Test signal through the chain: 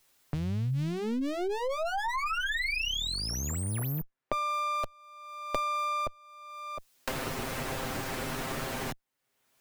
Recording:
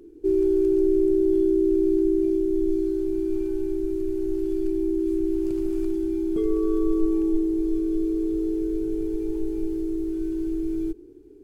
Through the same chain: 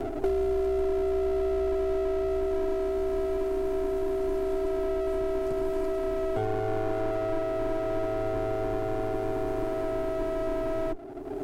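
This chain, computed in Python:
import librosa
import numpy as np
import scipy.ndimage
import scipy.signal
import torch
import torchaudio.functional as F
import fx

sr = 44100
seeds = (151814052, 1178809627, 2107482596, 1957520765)

y = fx.lower_of_two(x, sr, delay_ms=7.6)
y = fx.band_squash(y, sr, depth_pct=100)
y = y * librosa.db_to_amplitude(-2.5)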